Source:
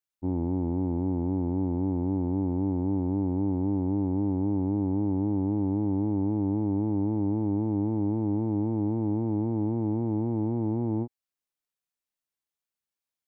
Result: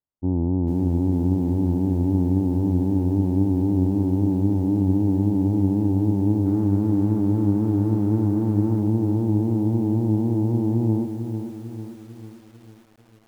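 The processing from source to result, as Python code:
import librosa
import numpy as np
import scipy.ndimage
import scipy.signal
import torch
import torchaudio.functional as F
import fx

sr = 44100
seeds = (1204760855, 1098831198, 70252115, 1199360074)

y = fx.delta_mod(x, sr, bps=16000, step_db=-35.0, at=(6.46, 8.8))
y = scipy.signal.sosfilt(scipy.signal.butter(4, 1200.0, 'lowpass', fs=sr, output='sos'), y)
y = fx.low_shelf(y, sr, hz=330.0, db=8.5)
y = fx.echo_crushed(y, sr, ms=448, feedback_pct=55, bits=8, wet_db=-8)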